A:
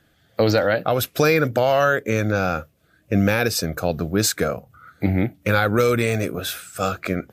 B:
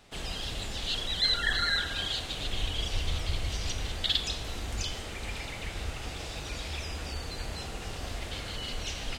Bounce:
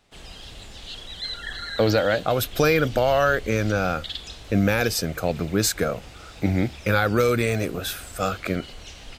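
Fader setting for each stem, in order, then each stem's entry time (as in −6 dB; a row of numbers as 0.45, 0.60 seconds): −2.0, −5.5 decibels; 1.40, 0.00 seconds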